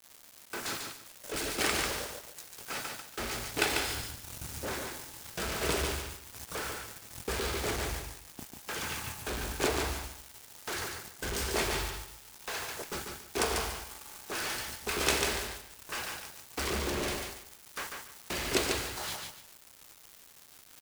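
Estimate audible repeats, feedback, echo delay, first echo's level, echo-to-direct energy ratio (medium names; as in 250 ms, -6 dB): 3, 24%, 144 ms, -4.5 dB, -4.0 dB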